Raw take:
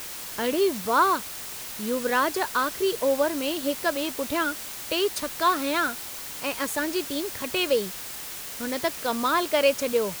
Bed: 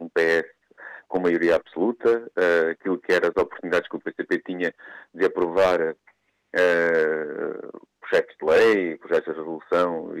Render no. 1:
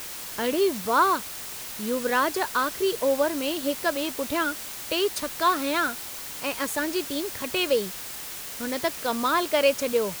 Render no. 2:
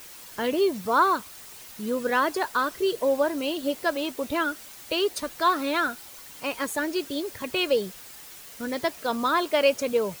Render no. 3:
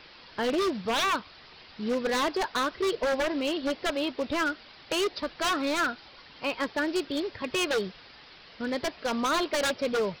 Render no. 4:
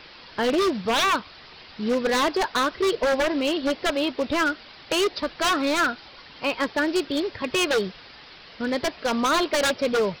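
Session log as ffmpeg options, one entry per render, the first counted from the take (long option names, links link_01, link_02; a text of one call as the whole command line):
ffmpeg -i in.wav -af anull out.wav
ffmpeg -i in.wav -af "afftdn=noise_reduction=9:noise_floor=-37" out.wav
ffmpeg -i in.wav -af "aresample=11025,acrusher=bits=4:mode=log:mix=0:aa=0.000001,aresample=44100,aeval=exprs='0.0891*(abs(mod(val(0)/0.0891+3,4)-2)-1)':channel_layout=same" out.wav
ffmpeg -i in.wav -af "volume=5dB" out.wav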